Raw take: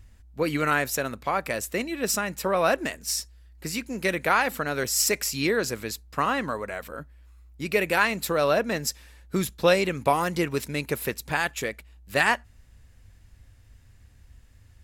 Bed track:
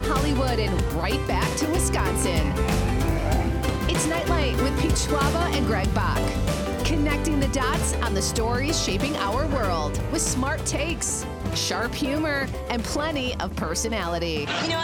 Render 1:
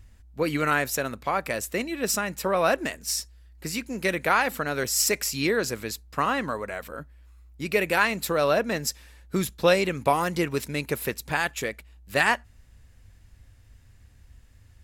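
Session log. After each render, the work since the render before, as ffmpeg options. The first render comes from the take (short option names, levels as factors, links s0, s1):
-af anull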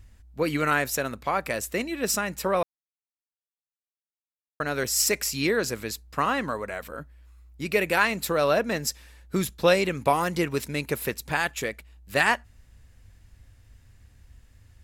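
-filter_complex "[0:a]asplit=3[s0][s1][s2];[s0]atrim=end=2.63,asetpts=PTS-STARTPTS,afade=t=out:st=2.626:d=0.004:c=hsin[s3];[s1]atrim=start=2.63:end=4.6,asetpts=PTS-STARTPTS,volume=0[s4];[s2]atrim=start=4.6,asetpts=PTS-STARTPTS,afade=t=in:d=0.004:c=hsin[s5];[s3][s4][s5]concat=n=3:v=0:a=1"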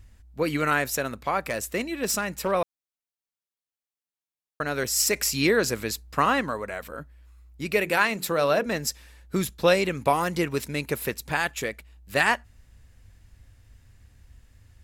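-filter_complex "[0:a]asettb=1/sr,asplit=3[s0][s1][s2];[s0]atrim=end=1.394[s3];[s1]atrim=start=1.39:end=2.52,asetpts=PTS-STARTPTS,afade=t=in:d=0.004:c=qsin,afade=t=out:st=1.126:d=0.004:c=qsin,asoftclip=type=hard:threshold=0.106[s4];[s2]atrim=start=2.516[s5];[s3][s4]acrossfade=d=0.004:c1=hsin:c2=qsin[s6];[s6][s5]acrossfade=d=0.004:c1=qsin:c2=hsin,asettb=1/sr,asplit=3[s7][s8][s9];[s7]atrim=end=7.804[s10];[s8]atrim=start=7.8:end=8.66,asetpts=PTS-STARTPTS,afade=t=in:d=0.004:c=qsin,afade=t=out:st=0.856:d=0.004:c=qsin,bandreject=f=60:t=h:w=6,bandreject=f=120:t=h:w=6,bandreject=f=180:t=h:w=6,bandreject=f=240:t=h:w=6,bandreject=f=300:t=h:w=6,bandreject=f=360:t=h:w=6,bandreject=f=420:t=h:w=6,bandreject=f=480:t=h:w=6[s11];[s9]atrim=start=8.656[s12];[s10][s11]acrossfade=d=0.004:c1=hsin:c2=qsin[s13];[s13][s12]acrossfade=d=0.004:c1=qsin:c2=hsin,asplit=3[s14][s15][s16];[s14]atrim=end=5.162[s17];[s15]atrim=start=5.158:end=6.412,asetpts=PTS-STARTPTS,volume=1.41[s18];[s16]atrim=start=6.408[s19];[s17][s18]acrossfade=d=0.004:c1=hsin:c2=hsin[s20];[s20][s19]acrossfade=d=0.004:c1=hsin:c2=hsin"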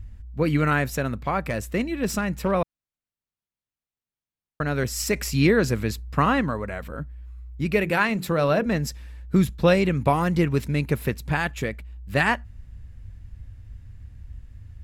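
-af "bass=f=250:g=12,treble=f=4000:g=-7"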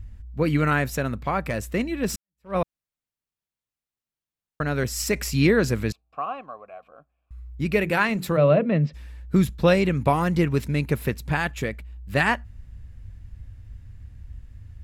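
-filter_complex "[0:a]asettb=1/sr,asplit=3[s0][s1][s2];[s0]atrim=end=5.924[s3];[s1]atrim=start=5.92:end=7.31,asetpts=PTS-STARTPTS,afade=t=in:d=0.004:c=qsin,afade=t=out:st=1.386:d=0.004:c=qsin,asplit=3[s4][s5][s6];[s4]bandpass=f=730:t=q:w=8,volume=1[s7];[s5]bandpass=f=1090:t=q:w=8,volume=0.501[s8];[s6]bandpass=f=2440:t=q:w=8,volume=0.355[s9];[s7][s8][s9]amix=inputs=3:normalize=0[s10];[s2]atrim=start=7.306[s11];[s3][s10]acrossfade=d=0.004:c1=hsin:c2=qsin[s12];[s12][s11]acrossfade=d=0.004:c1=qsin:c2=hsin,asplit=3[s13][s14][s15];[s13]afade=t=out:st=8.36:d=0.02[s16];[s14]highpass=f=140:w=0.5412,highpass=f=140:w=1.3066,equalizer=f=150:t=q:w=4:g=9,equalizer=f=580:t=q:w=4:g=6,equalizer=f=840:t=q:w=4:g=-7,equalizer=f=1600:t=q:w=4:g=-9,lowpass=f=3100:w=0.5412,lowpass=f=3100:w=1.3066,afade=t=in:st=8.36:d=0.02,afade=t=out:st=8.93:d=0.02[s17];[s15]afade=t=in:st=8.93:d=0.02[s18];[s16][s17][s18]amix=inputs=3:normalize=0,asplit=2[s19][s20];[s19]atrim=end=2.16,asetpts=PTS-STARTPTS,afade=t=out:st=2.156:d=0.004:c=hsin[s21];[s20]atrim=start=2.16,asetpts=PTS-STARTPTS,afade=t=in:d=0.4:c=exp[s22];[s21][s22]concat=n=2:v=0:a=1"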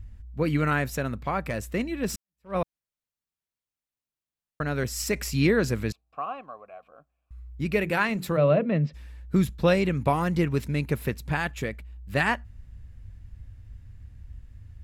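-af "volume=0.708"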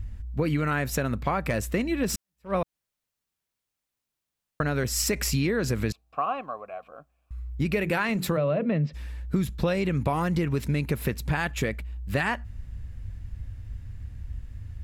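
-filter_complex "[0:a]asplit=2[s0][s1];[s1]alimiter=limit=0.1:level=0:latency=1,volume=1.19[s2];[s0][s2]amix=inputs=2:normalize=0,acompressor=threshold=0.0794:ratio=6"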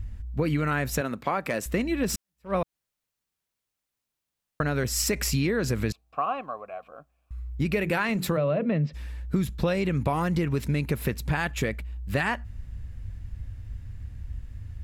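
-filter_complex "[0:a]asettb=1/sr,asplit=3[s0][s1][s2];[s0]atrim=end=1.014[s3];[s1]atrim=start=1.01:end=1.66,asetpts=PTS-STARTPTS,afade=t=in:d=0.004:c=qsin,afade=t=out:st=0.646:d=0.004:c=qsin,highpass=220[s4];[s2]atrim=start=1.656[s5];[s3][s4]acrossfade=d=0.004:c1=hsin:c2=qsin[s6];[s6][s5]acrossfade=d=0.004:c1=qsin:c2=hsin"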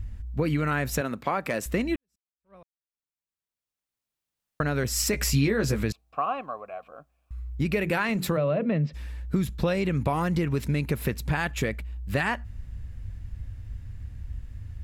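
-filter_complex "[0:a]asettb=1/sr,asplit=3[s0][s1][s2];[s0]atrim=end=5.124[s3];[s1]atrim=start=5.12:end=5.83,asetpts=PTS-STARTPTS,afade=t=in:d=0.004:c=qsin,afade=t=out:st=0.706:d=0.004:c=qsin,asplit=2[s4][s5];[s5]adelay=14,volume=0.562[s6];[s4][s6]amix=inputs=2:normalize=0,atrim=end_sample=31311[s7];[s2]atrim=start=5.826[s8];[s3][s7]acrossfade=d=0.004:c1=hsin:c2=qsin[s9];[s9][s8]acrossfade=d=0.004:c1=qsin:c2=hsin,asplit=2[s10][s11];[s10]atrim=end=1.96,asetpts=PTS-STARTPTS,afade=t=out:st=1.956:d=0.004:c=hsin[s12];[s11]atrim=start=1.96,asetpts=PTS-STARTPTS,afade=t=in:d=2.65:c=qua[s13];[s12][s13]concat=n=2:v=0:a=1"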